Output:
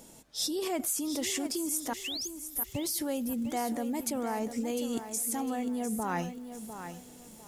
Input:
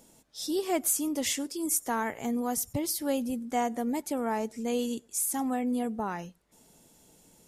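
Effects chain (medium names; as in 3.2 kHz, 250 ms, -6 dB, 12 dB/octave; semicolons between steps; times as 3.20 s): 1.93–2.72 s: inverse Chebyshev band-stop 190–5700 Hz, stop band 50 dB; in parallel at +2 dB: compressor with a negative ratio -36 dBFS, ratio -0.5; 2.04–2.28 s: on the sum: painted sound rise 2.5–7 kHz -31 dBFS; bit-crushed delay 702 ms, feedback 35%, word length 8-bit, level -9.5 dB; trim -5.5 dB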